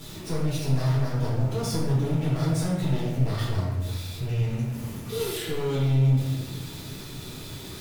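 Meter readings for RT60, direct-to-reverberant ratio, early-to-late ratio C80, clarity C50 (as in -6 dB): 1.3 s, -8.5 dB, 3.0 dB, 0.0 dB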